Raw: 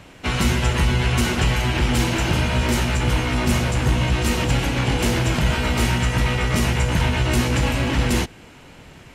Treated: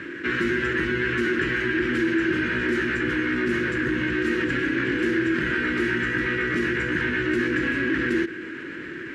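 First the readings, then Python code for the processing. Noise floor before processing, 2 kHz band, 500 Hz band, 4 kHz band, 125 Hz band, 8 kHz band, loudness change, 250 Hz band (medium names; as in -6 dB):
-45 dBFS, +3.0 dB, 0.0 dB, -10.0 dB, -15.0 dB, under -15 dB, -3.0 dB, 0.0 dB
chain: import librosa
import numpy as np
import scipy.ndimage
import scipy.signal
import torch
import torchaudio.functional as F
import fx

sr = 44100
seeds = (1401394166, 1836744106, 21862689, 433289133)

y = fx.double_bandpass(x, sr, hz=750.0, octaves=2.3)
y = fx.env_flatten(y, sr, amount_pct=50)
y = F.gain(torch.from_numpy(y), 6.0).numpy()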